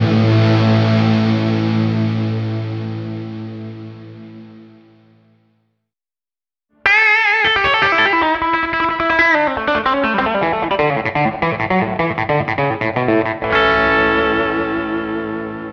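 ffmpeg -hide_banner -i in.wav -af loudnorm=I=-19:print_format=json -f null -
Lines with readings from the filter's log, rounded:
"input_i" : "-15.5",
"input_tp" : "-1.2",
"input_lra" : "7.9",
"input_thresh" : "-26.2",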